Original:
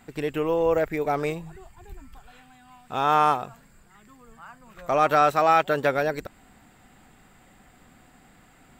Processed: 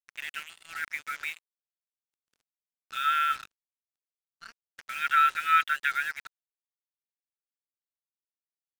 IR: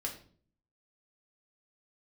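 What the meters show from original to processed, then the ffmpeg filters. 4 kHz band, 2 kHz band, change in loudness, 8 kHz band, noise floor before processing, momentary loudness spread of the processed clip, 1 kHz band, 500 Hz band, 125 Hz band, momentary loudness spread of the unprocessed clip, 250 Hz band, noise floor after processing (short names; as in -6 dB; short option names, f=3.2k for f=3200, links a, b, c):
+1.5 dB, +2.0 dB, -4.0 dB, n/a, -56 dBFS, 17 LU, -5.5 dB, under -40 dB, under -30 dB, 15 LU, under -30 dB, under -85 dBFS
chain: -af "afftfilt=real='re*between(b*sr/4096,1300,3900)':imag='im*between(b*sr/4096,1300,3900)':win_size=4096:overlap=0.75,acrusher=bits=6:mix=0:aa=0.5,volume=2dB"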